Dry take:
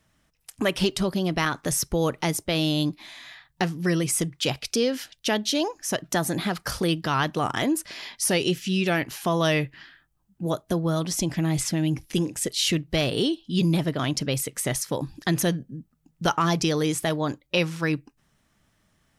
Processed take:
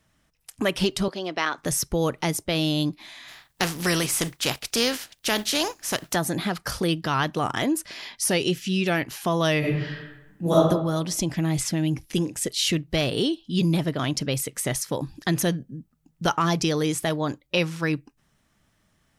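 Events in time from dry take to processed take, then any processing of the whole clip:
0:01.08–0:01.58: three-way crossover with the lows and the highs turned down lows −22 dB, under 300 Hz, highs −23 dB, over 7,000 Hz
0:03.27–0:06.14: compressing power law on the bin magnitudes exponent 0.56
0:09.59–0:10.55: thrown reverb, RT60 0.98 s, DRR −8.5 dB

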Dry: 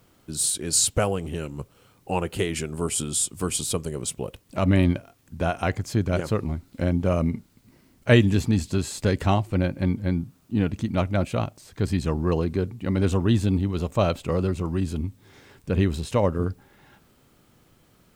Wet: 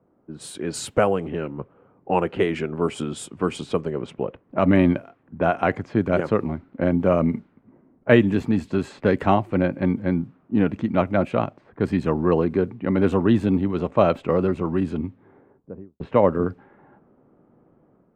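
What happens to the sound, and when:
0:14.98–0:16.00: fade out and dull
whole clip: low-pass that shuts in the quiet parts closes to 740 Hz, open at −20 dBFS; three-way crossover with the lows and the highs turned down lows −15 dB, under 160 Hz, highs −19 dB, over 2,500 Hz; automatic gain control gain up to 6 dB

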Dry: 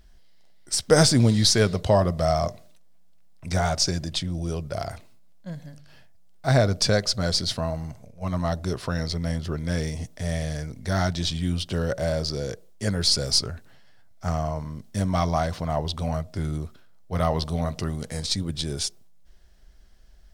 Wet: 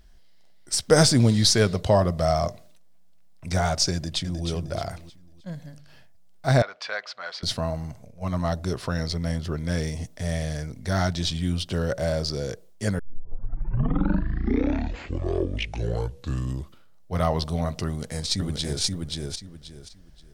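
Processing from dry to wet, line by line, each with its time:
0:03.93–0:04.47: delay throw 310 ms, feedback 35%, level −8 dB
0:06.62–0:07.43: flat-topped band-pass 1,600 Hz, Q 0.8
0:12.99: tape start 4.16 s
0:17.86–0:18.82: delay throw 530 ms, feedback 25%, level −2.5 dB

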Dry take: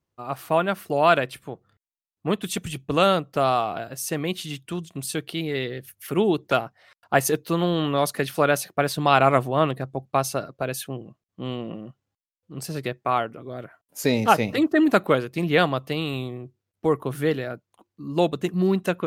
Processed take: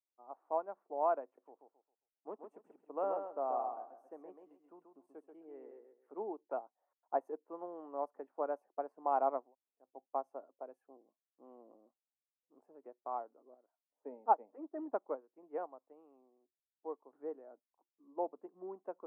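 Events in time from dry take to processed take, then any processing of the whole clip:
0:01.24–0:06.13: feedback echo with a high-pass in the loop 134 ms, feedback 28%, high-pass 150 Hz, level −4.5 dB
0:09.43–0:09.88: fill with room tone, crossfade 0.24 s
0:13.54–0:17.13: expander for the loud parts, over −33 dBFS
whole clip: elliptic band-pass filter 250–910 Hz, stop band 60 dB; first difference; expander for the loud parts 1.5 to 1, over −54 dBFS; level +11 dB

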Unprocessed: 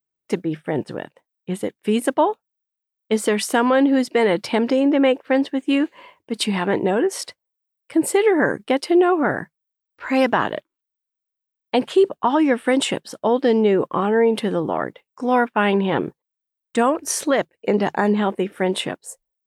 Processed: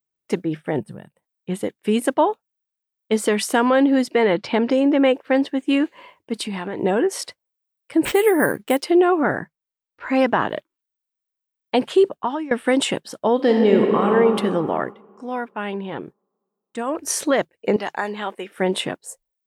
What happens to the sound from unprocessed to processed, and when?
0:00.79–0:01.22: gain on a spectral selection 220–7,900 Hz −13 dB
0:04.15–0:04.71: low-pass filter 4,400 Hz
0:06.38–0:06.79: downward compressor 5 to 1, threshold −24 dBFS
0:08.05–0:08.83: bad sample-rate conversion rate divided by 4×, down none, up hold
0:09.38–0:10.50: high-shelf EQ 3,900 Hz −8 dB
0:12.04–0:12.51: fade out linear, to −19.5 dB
0:13.35–0:14.09: thrown reverb, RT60 2.8 s, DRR 1 dB
0:14.83–0:16.99: duck −9.5 dB, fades 0.13 s
0:17.76–0:18.58: high-pass filter 1,100 Hz 6 dB per octave

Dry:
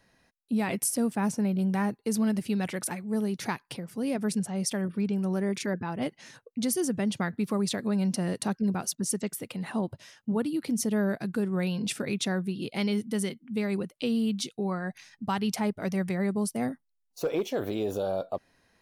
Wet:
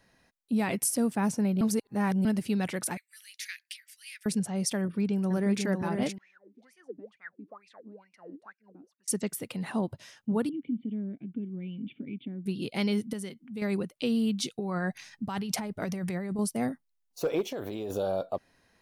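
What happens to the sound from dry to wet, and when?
0:01.61–0:02.25: reverse
0:02.97–0:04.26: Butterworth high-pass 1,800 Hz 48 dB per octave
0:04.81–0:05.63: delay throw 490 ms, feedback 35%, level −4.5 dB
0:06.18–0:09.08: LFO wah 2.2 Hz 270–2,500 Hz, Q 16
0:10.49–0:12.46: formant resonators in series i
0:13.13–0:13.62: downward compressor 1.5 to 1, threshold −48 dBFS
0:14.42–0:16.39: compressor whose output falls as the input rises −32 dBFS
0:17.41–0:17.90: downward compressor, threshold −31 dBFS

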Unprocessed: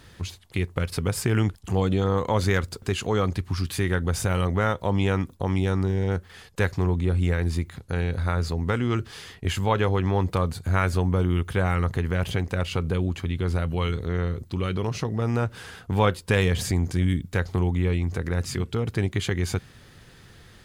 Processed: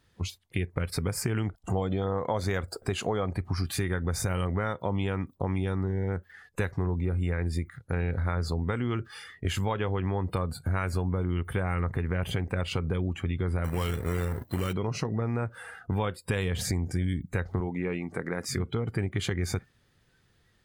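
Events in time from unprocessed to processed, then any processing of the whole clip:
0:01.46–0:03.74: parametric band 670 Hz +7 dB
0:13.64–0:14.73: log-companded quantiser 4 bits
0:17.60–0:18.49: high-pass filter 190 Hz 6 dB per octave
whole clip: noise reduction from a noise print of the clip's start 17 dB; downward compressor, threshold −25 dBFS

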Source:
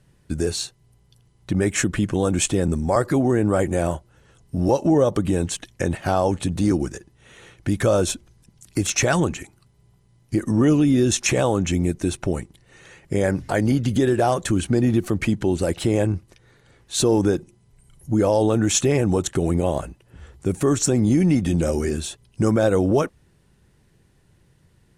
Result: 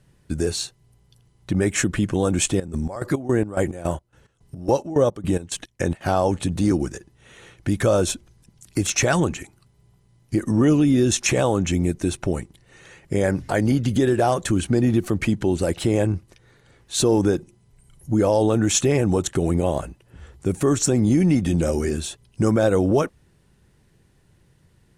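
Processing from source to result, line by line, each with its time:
0:02.46–0:06.01: square-wave tremolo 3.6 Hz

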